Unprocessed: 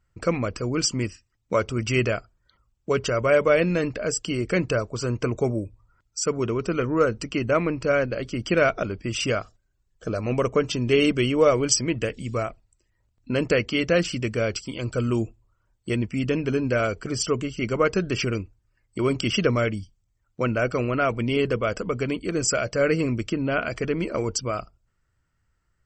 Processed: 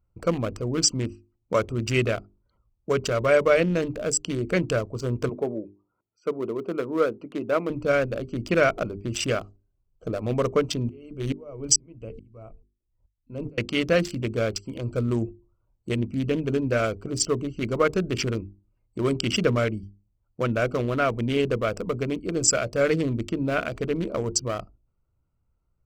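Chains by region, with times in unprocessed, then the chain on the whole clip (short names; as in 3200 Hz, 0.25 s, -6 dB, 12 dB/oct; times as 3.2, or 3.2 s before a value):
5.29–7.7 HPF 260 Hz + air absorption 340 m
10.89–13.58 low shelf 92 Hz +10.5 dB + notches 50/100/150/200/250/300/350/400/450 Hz + dB-ramp tremolo swelling 2.3 Hz, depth 34 dB
whole clip: Wiener smoothing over 25 samples; high shelf 7300 Hz +11 dB; notches 50/100/150/200/250/300/350/400 Hz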